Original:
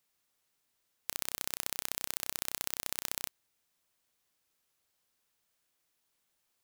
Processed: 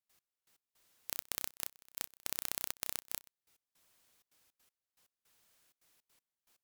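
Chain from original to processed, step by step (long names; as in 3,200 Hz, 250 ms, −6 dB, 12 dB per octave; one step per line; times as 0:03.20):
sine wavefolder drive 7 dB, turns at −4.5 dBFS
gate pattern ".x...x..xxxxx.xx" 160 BPM −24 dB
level −3.5 dB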